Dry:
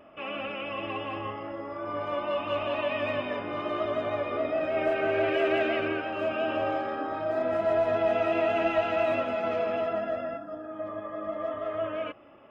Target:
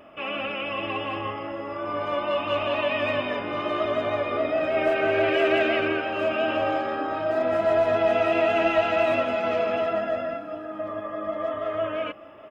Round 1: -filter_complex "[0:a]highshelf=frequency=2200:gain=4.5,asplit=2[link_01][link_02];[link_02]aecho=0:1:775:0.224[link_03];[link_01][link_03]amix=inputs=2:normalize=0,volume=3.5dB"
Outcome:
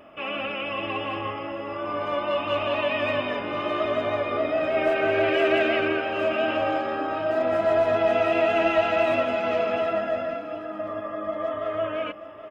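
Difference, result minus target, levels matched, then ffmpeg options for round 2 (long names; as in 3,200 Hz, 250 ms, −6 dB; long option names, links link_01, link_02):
echo-to-direct +6 dB
-filter_complex "[0:a]highshelf=frequency=2200:gain=4.5,asplit=2[link_01][link_02];[link_02]aecho=0:1:775:0.112[link_03];[link_01][link_03]amix=inputs=2:normalize=0,volume=3.5dB"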